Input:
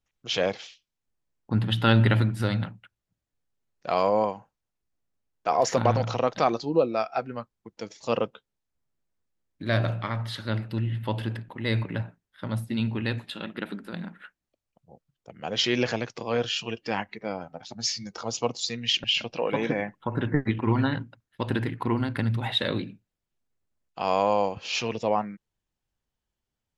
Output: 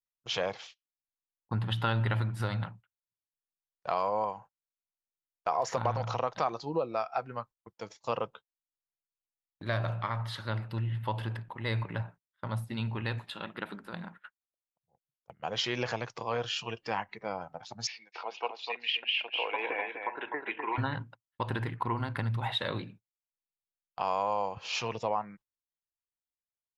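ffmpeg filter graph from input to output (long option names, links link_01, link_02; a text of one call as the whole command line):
ffmpeg -i in.wav -filter_complex "[0:a]asettb=1/sr,asplit=3[link_01][link_02][link_03];[link_01]atrim=end=17.874[link_04];[link_02]atrim=start=17.87:end=20.78,asetpts=PTS-STARTPTS,afade=type=in:duration=0.004:curve=qsin,afade=type=out:start_time=2.906:duration=0.004:curve=qsin,highpass=frequency=380:width=0.5412,highpass=frequency=380:width=1.3066,equalizer=frequency=550:width_type=q:width=4:gain=-7,equalizer=frequency=1200:width_type=q:width=4:gain=-7,equalizer=frequency=2500:width_type=q:width=4:gain=10,lowpass=frequency=3300:width=0.5412,lowpass=frequency=3300:width=1.3066,aecho=1:1:251:0.473,atrim=end_sample=128331[link_05];[link_03]atrim=start=20.776[link_06];[link_04][link_05]acrossfade=duration=0.004:curve1=hsin:curve2=qsin[link_07];[link_07][link_06]acrossfade=duration=0.004:curve1=qsin:curve2=hsin,agate=range=-22dB:threshold=-45dB:ratio=16:detection=peak,equalizer=frequency=125:width_type=o:width=1:gain=3,equalizer=frequency=250:width_type=o:width=1:gain=-6,equalizer=frequency=1000:width_type=o:width=1:gain=8,acompressor=threshold=-23dB:ratio=2.5,volume=-5dB" out.wav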